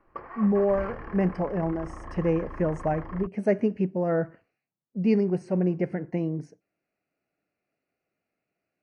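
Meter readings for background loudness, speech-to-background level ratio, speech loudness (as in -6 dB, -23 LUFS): -41.5 LUFS, 14.0 dB, -27.5 LUFS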